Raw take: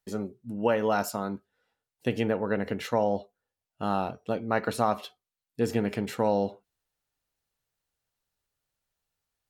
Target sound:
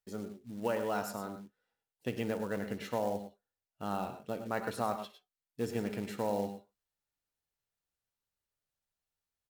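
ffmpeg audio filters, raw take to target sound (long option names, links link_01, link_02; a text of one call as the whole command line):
ffmpeg -i in.wav -af "aecho=1:1:58|99|104|118:0.141|0.224|0.2|0.2,acrusher=bits=5:mode=log:mix=0:aa=0.000001,volume=-8.5dB" out.wav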